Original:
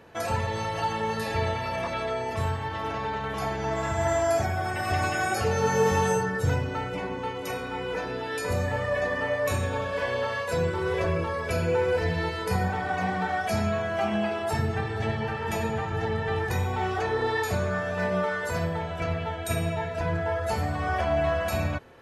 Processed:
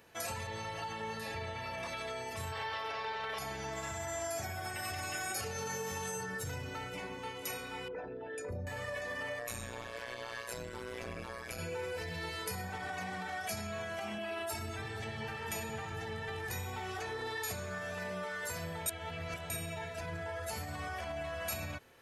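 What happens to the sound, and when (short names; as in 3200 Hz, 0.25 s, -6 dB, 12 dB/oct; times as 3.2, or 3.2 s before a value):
0.47–1.83 high shelf 5000 Hz -11.5 dB
2.53–3.39 spectral gain 380–5900 Hz +12 dB
7.88–8.67 formant sharpening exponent 2
9.39–11.59 AM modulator 120 Hz, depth 90%
14.18–14.82 comb 3.1 ms, depth 84%
18.86–19.5 reverse
whole clip: bell 2200 Hz +2.5 dB; limiter -21 dBFS; pre-emphasis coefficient 0.8; gain +2 dB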